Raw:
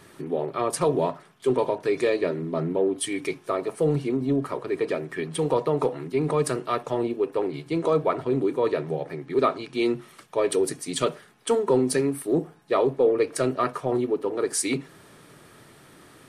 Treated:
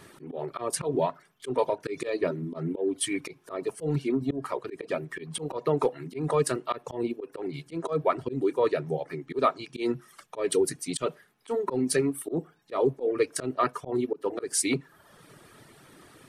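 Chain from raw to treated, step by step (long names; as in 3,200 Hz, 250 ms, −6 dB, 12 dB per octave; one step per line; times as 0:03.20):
reverb reduction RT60 0.82 s
volume swells 138 ms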